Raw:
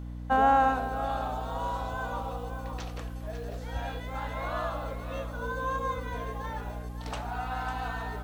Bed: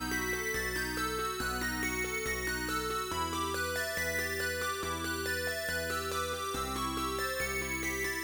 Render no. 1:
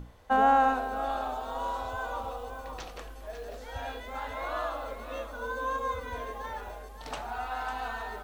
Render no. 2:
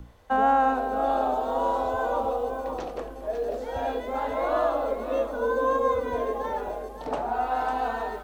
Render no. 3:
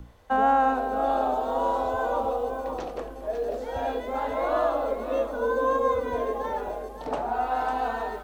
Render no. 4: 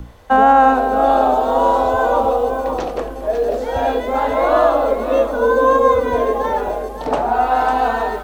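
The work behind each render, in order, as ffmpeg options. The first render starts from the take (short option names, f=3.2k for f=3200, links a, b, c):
-af "bandreject=f=60:t=h:w=6,bandreject=f=120:t=h:w=6,bandreject=f=180:t=h:w=6,bandreject=f=240:t=h:w=6,bandreject=f=300:t=h:w=6"
-filter_complex "[0:a]acrossover=split=200|740|2000[a][b][c][d];[b]dynaudnorm=f=620:g=3:m=14.5dB[e];[d]alimiter=level_in=13dB:limit=-24dB:level=0:latency=1:release=456,volume=-13dB[f];[a][e][c][f]amix=inputs=4:normalize=0"
-af anull
-af "volume=11dB,alimiter=limit=-1dB:level=0:latency=1"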